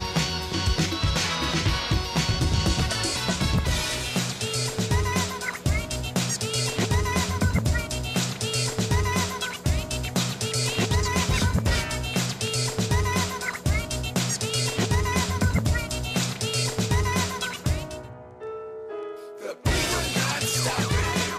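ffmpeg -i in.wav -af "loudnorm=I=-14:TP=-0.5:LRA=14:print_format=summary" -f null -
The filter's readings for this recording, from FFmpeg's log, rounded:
Input Integrated:    -25.1 LUFS
Input True Peak:     -11.1 dBTP
Input LRA:             2.5 LU
Input Threshold:     -35.4 LUFS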